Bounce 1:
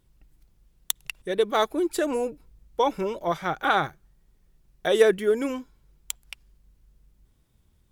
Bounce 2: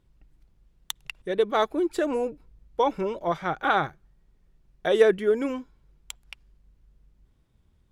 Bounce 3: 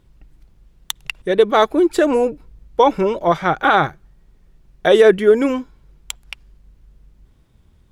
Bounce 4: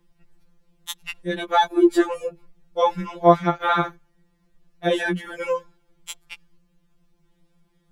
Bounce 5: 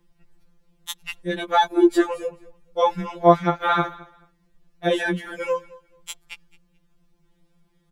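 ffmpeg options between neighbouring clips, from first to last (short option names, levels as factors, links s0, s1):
-af "aemphasis=mode=reproduction:type=50kf"
-af "alimiter=level_in=3.76:limit=0.891:release=50:level=0:latency=1,volume=0.891"
-af "afftfilt=real='re*2.83*eq(mod(b,8),0)':imag='im*2.83*eq(mod(b,8),0)':win_size=2048:overlap=0.75,volume=0.708"
-af "aecho=1:1:217|434:0.0841|0.0168"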